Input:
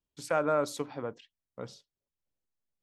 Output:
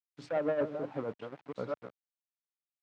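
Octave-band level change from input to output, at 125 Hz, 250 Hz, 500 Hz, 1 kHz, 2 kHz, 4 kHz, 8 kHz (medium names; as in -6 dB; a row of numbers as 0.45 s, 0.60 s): -2.0 dB, -0.5 dB, -1.5 dB, -7.5 dB, -6.0 dB, -10.5 dB, under -20 dB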